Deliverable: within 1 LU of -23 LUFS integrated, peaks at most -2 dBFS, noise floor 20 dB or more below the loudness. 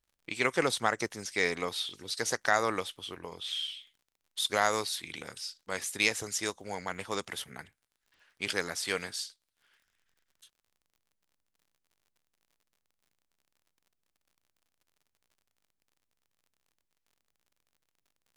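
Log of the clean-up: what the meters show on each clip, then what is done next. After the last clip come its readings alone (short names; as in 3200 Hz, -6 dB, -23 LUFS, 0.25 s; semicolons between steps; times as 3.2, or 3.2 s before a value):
ticks 39/s; loudness -32.5 LUFS; peak -10.0 dBFS; loudness target -23.0 LUFS
-> de-click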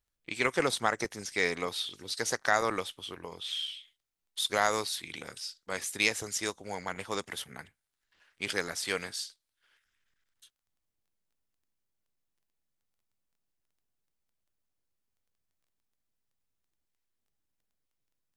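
ticks 0/s; loudness -32.5 LUFS; peak -10.0 dBFS; loudness target -23.0 LUFS
-> gain +9.5 dB; limiter -2 dBFS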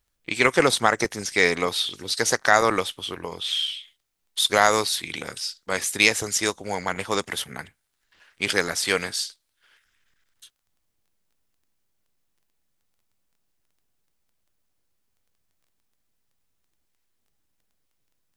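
loudness -23.0 LUFS; peak -2.0 dBFS; noise floor -75 dBFS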